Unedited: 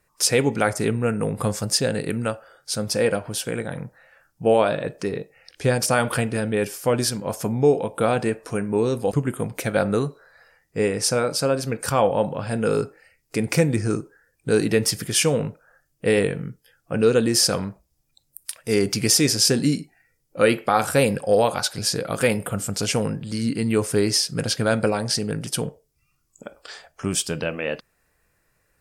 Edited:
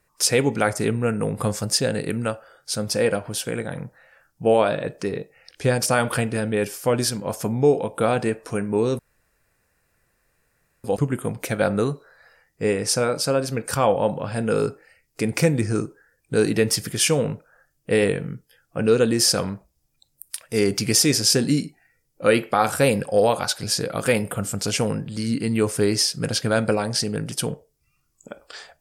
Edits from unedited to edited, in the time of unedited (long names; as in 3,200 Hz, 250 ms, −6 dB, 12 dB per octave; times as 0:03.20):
0:08.99: splice in room tone 1.85 s